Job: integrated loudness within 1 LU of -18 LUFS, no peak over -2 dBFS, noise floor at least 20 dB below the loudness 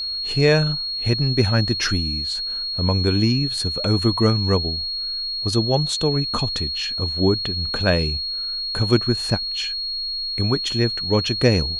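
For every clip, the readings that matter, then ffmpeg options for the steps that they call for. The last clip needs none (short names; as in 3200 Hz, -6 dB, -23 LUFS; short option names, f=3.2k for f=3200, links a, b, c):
steady tone 4300 Hz; tone level -24 dBFS; loudness -20.5 LUFS; peak -1.5 dBFS; loudness target -18.0 LUFS
-> -af "bandreject=f=4.3k:w=30"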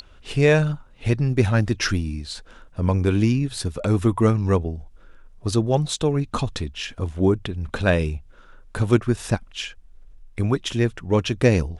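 steady tone none; loudness -22.5 LUFS; peak -2.0 dBFS; loudness target -18.0 LUFS
-> -af "volume=4.5dB,alimiter=limit=-2dB:level=0:latency=1"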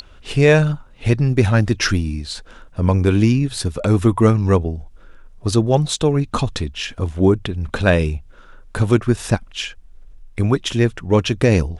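loudness -18.5 LUFS; peak -2.0 dBFS; noise floor -44 dBFS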